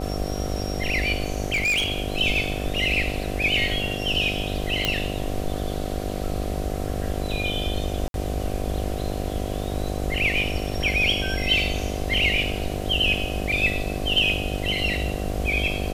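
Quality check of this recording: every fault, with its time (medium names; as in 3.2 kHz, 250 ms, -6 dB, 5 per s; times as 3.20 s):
buzz 50 Hz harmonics 15 -30 dBFS
1.52–2.00 s: clipped -19 dBFS
4.85 s: pop -6 dBFS
8.08–8.14 s: dropout 62 ms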